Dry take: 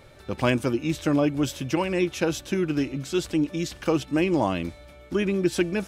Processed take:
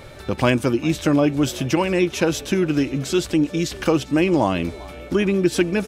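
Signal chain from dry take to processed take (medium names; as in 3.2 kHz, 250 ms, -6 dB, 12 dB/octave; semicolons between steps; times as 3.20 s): in parallel at +3 dB: compression, threshold -34 dBFS, peak gain reduction 16 dB; on the sum: frequency-shifting echo 397 ms, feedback 49%, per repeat +76 Hz, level -22 dB; trim +2.5 dB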